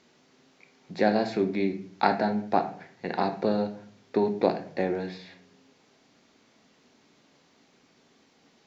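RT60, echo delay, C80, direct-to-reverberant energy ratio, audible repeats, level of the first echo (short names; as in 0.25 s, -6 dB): 0.55 s, none, 15.5 dB, 6.5 dB, none, none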